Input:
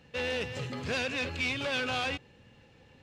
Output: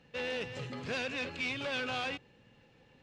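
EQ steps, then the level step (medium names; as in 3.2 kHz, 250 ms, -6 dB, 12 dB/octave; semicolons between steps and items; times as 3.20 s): peaking EQ 80 Hz -13 dB 0.39 oct; treble shelf 9.8 kHz -10.5 dB; -3.5 dB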